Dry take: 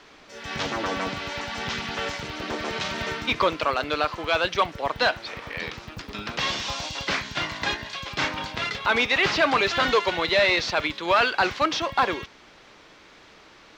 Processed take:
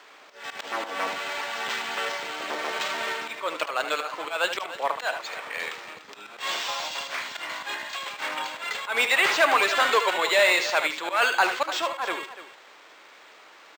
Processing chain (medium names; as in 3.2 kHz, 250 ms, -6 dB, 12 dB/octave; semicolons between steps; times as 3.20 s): high-pass 550 Hz 12 dB/octave; slow attack 146 ms; multi-tap echo 75/293 ms -9.5/-14 dB; decimation joined by straight lines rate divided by 4×; trim +2 dB